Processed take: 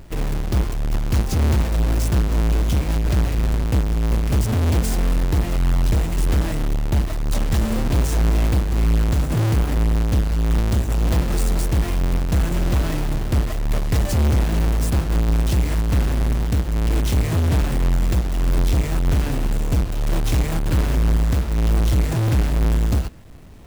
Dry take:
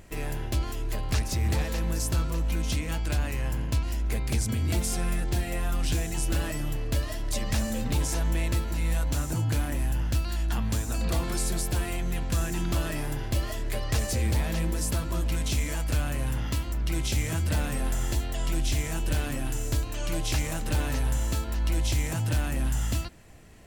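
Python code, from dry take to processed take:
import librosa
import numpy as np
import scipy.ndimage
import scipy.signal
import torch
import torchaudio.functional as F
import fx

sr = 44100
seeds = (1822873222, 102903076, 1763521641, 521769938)

y = fx.halfwave_hold(x, sr)
y = fx.low_shelf(y, sr, hz=400.0, db=4.5)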